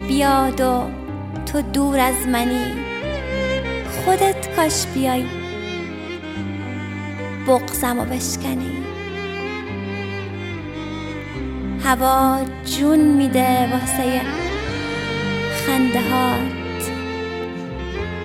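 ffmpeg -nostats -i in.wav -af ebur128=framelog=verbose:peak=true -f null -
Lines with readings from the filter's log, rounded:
Integrated loudness:
  I:         -20.8 LUFS
  Threshold: -30.8 LUFS
Loudness range:
  LRA:         6.7 LU
  Threshold: -40.8 LUFS
  LRA low:   -24.5 LUFS
  LRA high:  -17.8 LUFS
True peak:
  Peak:       -3.1 dBFS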